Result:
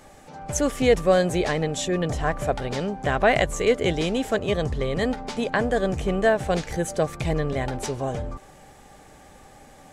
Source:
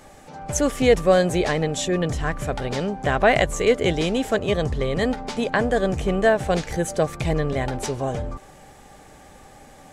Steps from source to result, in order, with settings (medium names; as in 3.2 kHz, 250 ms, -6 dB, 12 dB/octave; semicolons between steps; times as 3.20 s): 2.09–2.52 s: peaking EQ 670 Hz +7.5 dB 1.1 oct; trim -2 dB